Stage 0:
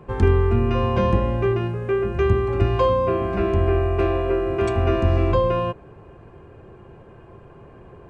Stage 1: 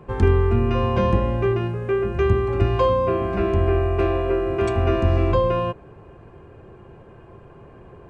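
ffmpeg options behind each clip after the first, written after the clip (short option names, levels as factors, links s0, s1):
-af anull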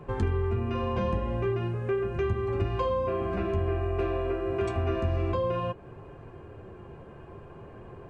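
-af "acompressor=threshold=0.0316:ratio=2,flanger=delay=6.8:depth=7.3:regen=-48:speed=0.49:shape=triangular,volume=1.41"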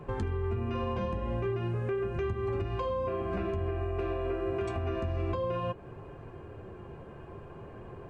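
-af "alimiter=limit=0.0668:level=0:latency=1:release=212"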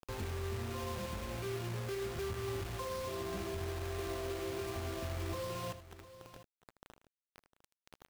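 -filter_complex "[0:a]acrusher=bits=5:mix=0:aa=0.000001,asplit=2[s0][s1];[s1]aecho=0:1:79|704:0.224|0.168[s2];[s0][s2]amix=inputs=2:normalize=0,volume=0.376"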